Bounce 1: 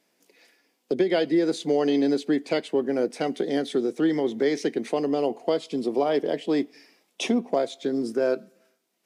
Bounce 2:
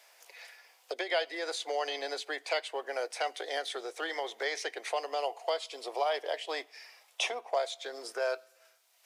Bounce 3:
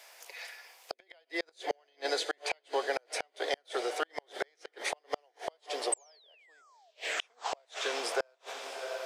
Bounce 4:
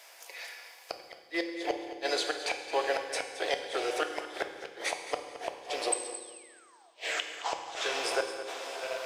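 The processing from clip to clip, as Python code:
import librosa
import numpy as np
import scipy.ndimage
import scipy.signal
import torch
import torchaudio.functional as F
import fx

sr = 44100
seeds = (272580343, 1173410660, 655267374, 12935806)

y1 = scipy.signal.sosfilt(scipy.signal.cheby2(4, 60, 190.0, 'highpass', fs=sr, output='sos'), x)
y1 = fx.band_squash(y1, sr, depth_pct=40)
y2 = fx.spec_paint(y1, sr, seeds[0], shape='fall', start_s=5.92, length_s=0.99, low_hz=630.0, high_hz=8400.0, level_db=-29.0)
y2 = fx.echo_diffused(y2, sr, ms=684, feedback_pct=50, wet_db=-12.0)
y2 = fx.gate_flip(y2, sr, shuts_db=-24.0, range_db=-39)
y2 = y2 * 10.0 ** (5.5 / 20.0)
y3 = fx.rattle_buzz(y2, sr, strikes_db=-53.0, level_db=-32.0)
y3 = fx.echo_feedback(y3, sr, ms=219, feedback_pct=28, wet_db=-13.5)
y3 = fx.rev_fdn(y3, sr, rt60_s=1.4, lf_ratio=1.35, hf_ratio=1.0, size_ms=18.0, drr_db=5.5)
y3 = y3 * 10.0 ** (1.0 / 20.0)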